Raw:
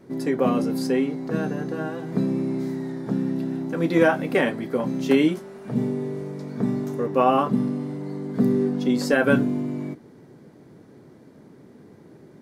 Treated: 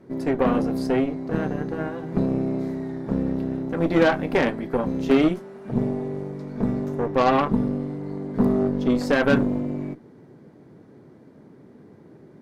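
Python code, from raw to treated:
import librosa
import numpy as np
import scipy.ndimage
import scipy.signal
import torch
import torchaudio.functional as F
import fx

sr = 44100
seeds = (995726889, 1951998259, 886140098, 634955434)

y = fx.high_shelf(x, sr, hz=3400.0, db=-9.5)
y = fx.cheby_harmonics(y, sr, harmonics=(8,), levels_db=(-20,), full_scale_db=-5.5)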